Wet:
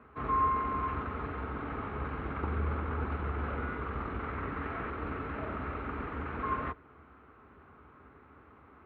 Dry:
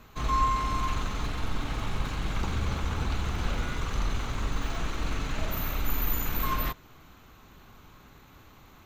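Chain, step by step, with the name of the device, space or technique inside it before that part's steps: 4.23–4.9 bell 2000 Hz +4.5 dB 0.77 oct; sub-octave bass pedal (octaver, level -3 dB; speaker cabinet 70–2100 Hz, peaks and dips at 72 Hz +5 dB, 110 Hz -8 dB, 170 Hz -6 dB, 270 Hz +3 dB, 430 Hz +7 dB, 1300 Hz +6 dB); gain -3.5 dB

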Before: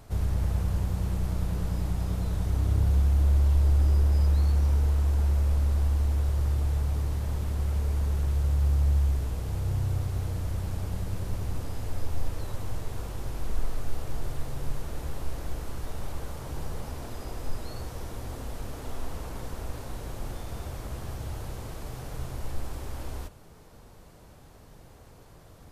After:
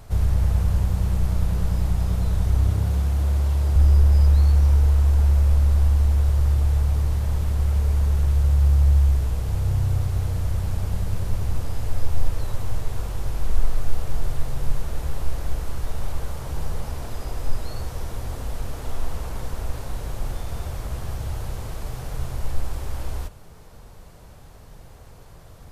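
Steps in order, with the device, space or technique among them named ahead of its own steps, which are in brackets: 2.7–3.76 HPF 94 Hz; low shelf boost with a cut just above (low shelf 65 Hz +5.5 dB; bell 290 Hz -4.5 dB 0.87 oct); gain +4.5 dB

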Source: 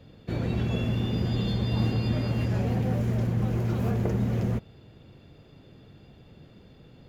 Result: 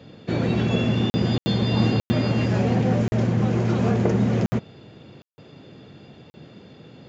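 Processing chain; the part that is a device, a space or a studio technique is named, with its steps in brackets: call with lost packets (HPF 140 Hz 12 dB/oct; downsampling 16000 Hz; packet loss packets of 20 ms bursts); gain +8.5 dB

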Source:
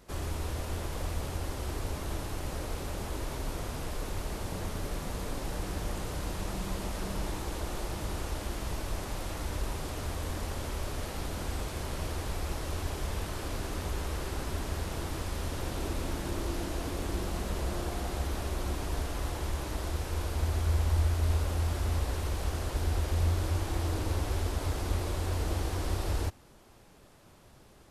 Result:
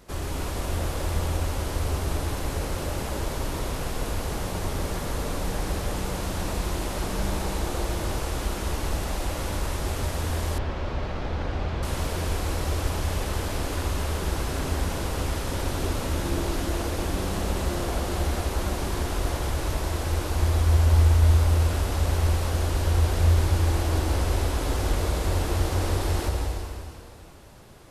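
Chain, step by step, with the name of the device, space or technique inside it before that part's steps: stairwell (reverb RT60 2.5 s, pre-delay 0.113 s, DRR 0.5 dB); 10.58–11.83 air absorption 220 m; gain +4.5 dB

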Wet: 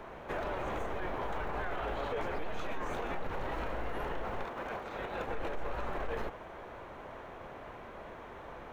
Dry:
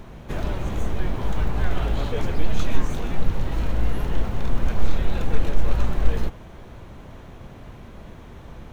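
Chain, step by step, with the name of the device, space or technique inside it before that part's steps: DJ mixer with the lows and highs turned down (three-band isolator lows -18 dB, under 390 Hz, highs -14 dB, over 2400 Hz; limiter -30.5 dBFS, peak gain reduction 11 dB); 4.43–5.27 HPF 250 Hz -> 60 Hz 6 dB/oct; gain +3 dB

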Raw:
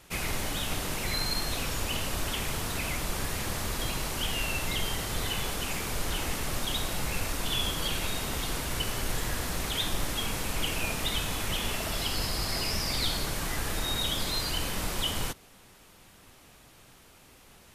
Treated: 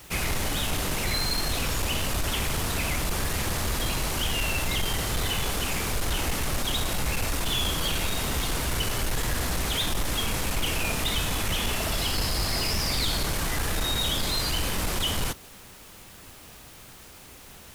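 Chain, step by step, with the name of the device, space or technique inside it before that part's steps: open-reel tape (soft clip -27 dBFS, distortion -14 dB; bell 64 Hz +3.5 dB 1.02 oct; white noise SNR 25 dB); gain +6 dB

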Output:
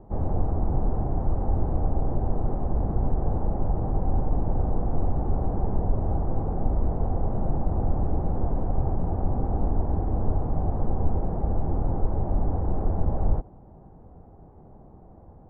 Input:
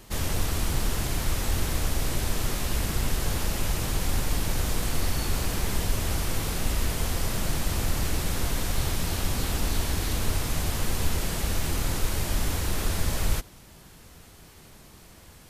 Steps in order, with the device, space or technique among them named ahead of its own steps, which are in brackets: under water (LPF 830 Hz 24 dB/oct; bell 780 Hz +7 dB 0.22 oct); gain +3 dB

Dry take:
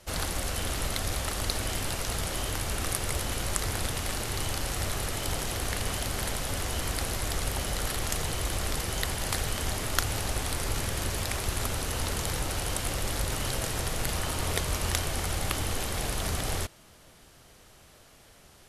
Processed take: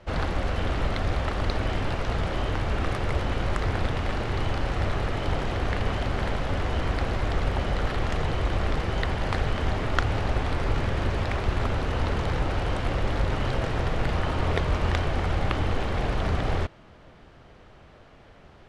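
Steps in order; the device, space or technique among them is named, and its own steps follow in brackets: phone in a pocket (LPF 3200 Hz 12 dB/oct; high shelf 2400 Hz -8.5 dB); gain +6.5 dB

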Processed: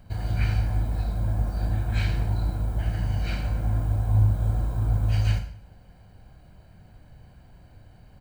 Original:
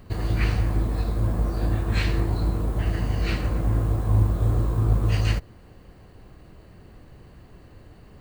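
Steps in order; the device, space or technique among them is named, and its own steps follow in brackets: microphone above a desk (comb 1.3 ms, depth 61%; reverb RT60 0.55 s, pre-delay 25 ms, DRR 6.5 dB); gain -6.5 dB

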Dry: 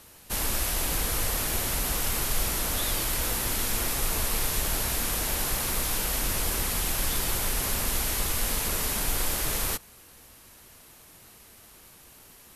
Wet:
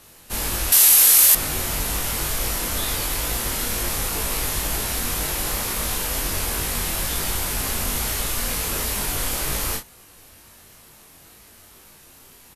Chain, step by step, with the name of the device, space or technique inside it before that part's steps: double-tracked vocal (doubler 34 ms -5.5 dB; chorus 2.1 Hz, delay 19.5 ms, depth 2.8 ms); 0.72–1.35 tilt +4.5 dB/oct; gain +5.5 dB

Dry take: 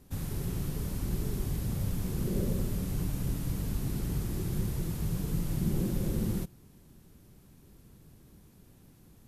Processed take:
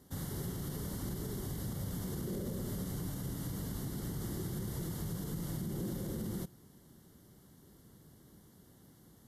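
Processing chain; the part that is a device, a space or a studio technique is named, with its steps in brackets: PA system with an anti-feedback notch (HPF 140 Hz 6 dB/oct; Butterworth band-stop 2500 Hz, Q 3.7; limiter -30.5 dBFS, peak gain reduction 9.5 dB)

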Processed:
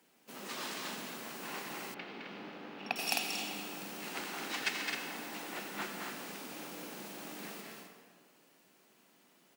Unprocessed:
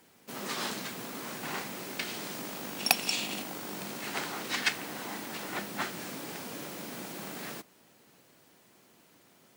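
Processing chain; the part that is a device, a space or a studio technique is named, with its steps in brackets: stadium PA (HPF 160 Hz 24 dB/oct; bell 2700 Hz +3.5 dB 0.28 oct; loudspeakers at several distances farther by 73 m -5 dB, 90 m -6 dB; reverb RT60 1.7 s, pre-delay 79 ms, DRR 6 dB); 1.94–2.96 air absorption 320 m; gain -7.5 dB

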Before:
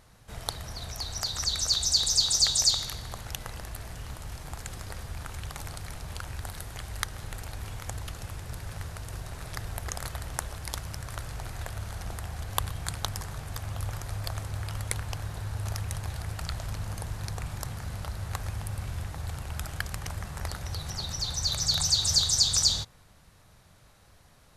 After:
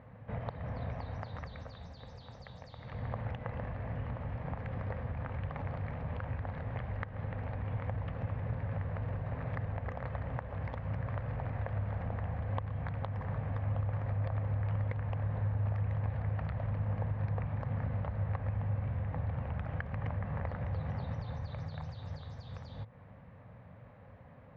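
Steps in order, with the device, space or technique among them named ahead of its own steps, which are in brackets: bass amplifier (compressor 5:1, threshold -36 dBFS, peak gain reduction 16.5 dB; speaker cabinet 69–2000 Hz, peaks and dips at 110 Hz +7 dB, 170 Hz +4 dB, 250 Hz +7 dB, 350 Hz -9 dB, 520 Hz +8 dB, 1400 Hz -7 dB); gain +3.5 dB

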